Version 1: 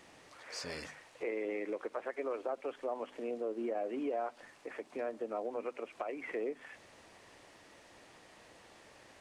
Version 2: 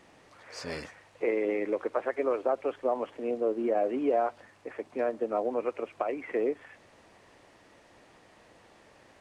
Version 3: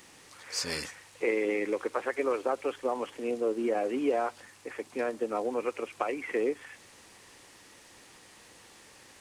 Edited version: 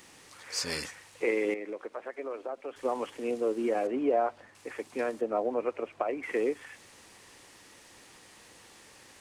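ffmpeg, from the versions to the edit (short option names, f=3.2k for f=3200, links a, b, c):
-filter_complex "[1:a]asplit=2[a][b];[2:a]asplit=4[c][d][e][f];[c]atrim=end=1.542[g];[0:a]atrim=start=1.538:end=2.762[h];[d]atrim=start=2.758:end=3.872[i];[a]atrim=start=3.868:end=4.552[j];[e]atrim=start=4.548:end=5.212[k];[b]atrim=start=5.208:end=6.232[l];[f]atrim=start=6.228[m];[g][h]acrossfade=d=0.004:c1=hsin:c2=hsin[n];[n][i]acrossfade=d=0.004:c1=hsin:c2=hsin[o];[o][j]acrossfade=d=0.004:c1=hsin:c2=hsin[p];[p][k]acrossfade=d=0.004:c1=hsin:c2=hsin[q];[q][l]acrossfade=d=0.004:c1=hsin:c2=hsin[r];[r][m]acrossfade=d=0.004:c1=hsin:c2=hsin"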